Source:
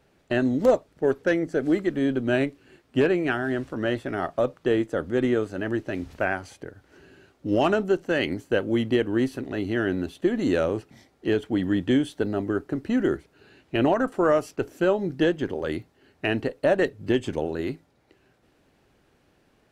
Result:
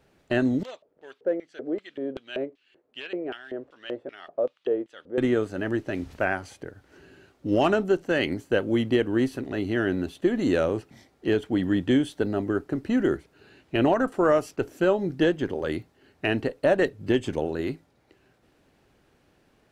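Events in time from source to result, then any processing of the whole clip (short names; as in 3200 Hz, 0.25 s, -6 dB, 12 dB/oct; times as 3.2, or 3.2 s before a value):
0.63–5.18 LFO band-pass square 2.6 Hz 500–3200 Hz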